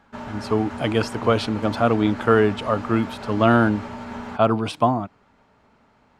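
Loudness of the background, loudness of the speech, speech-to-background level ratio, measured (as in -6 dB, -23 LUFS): -34.5 LUFS, -21.5 LUFS, 13.0 dB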